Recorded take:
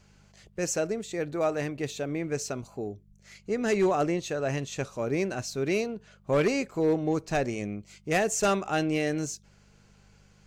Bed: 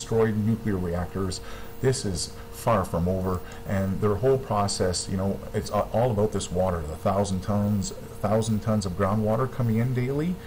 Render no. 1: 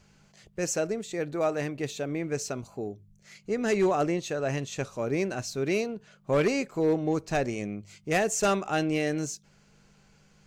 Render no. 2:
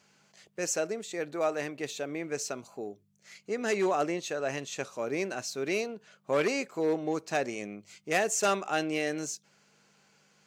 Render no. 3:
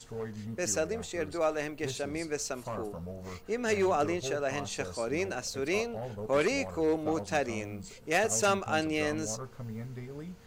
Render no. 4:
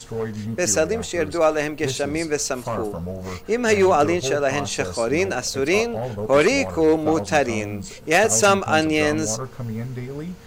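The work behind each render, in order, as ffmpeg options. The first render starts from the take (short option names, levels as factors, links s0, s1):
-af "bandreject=f=50:t=h:w=4,bandreject=f=100:t=h:w=4"
-af "highpass=170,lowshelf=f=340:g=-8"
-filter_complex "[1:a]volume=0.158[s0];[0:a][s0]amix=inputs=2:normalize=0"
-af "volume=3.55,alimiter=limit=0.708:level=0:latency=1"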